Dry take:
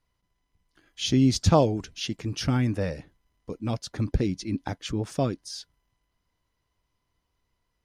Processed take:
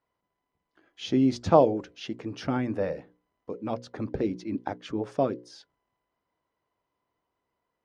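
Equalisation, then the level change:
resonant band-pass 480 Hz, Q 0.67
low-shelf EQ 360 Hz −6.5 dB
mains-hum notches 60/120/180/240/300/360/420/480/540 Hz
+5.5 dB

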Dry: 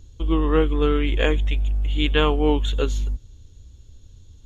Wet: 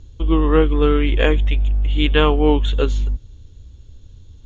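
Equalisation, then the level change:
high-frequency loss of the air 100 metres
+4.5 dB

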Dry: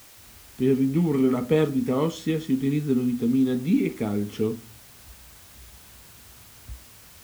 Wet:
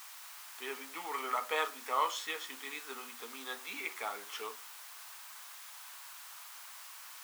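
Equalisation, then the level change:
four-pole ladder high-pass 830 Hz, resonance 40%
+7.5 dB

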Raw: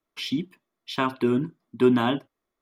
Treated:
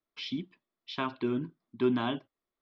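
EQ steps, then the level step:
low-pass with resonance 4,700 Hz, resonance Q 1.7
high-frequency loss of the air 82 metres
−8.0 dB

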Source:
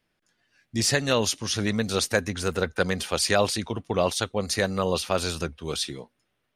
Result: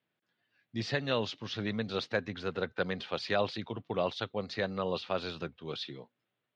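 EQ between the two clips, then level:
elliptic band-pass filter 110–3,900 Hz, stop band 50 dB
−7.5 dB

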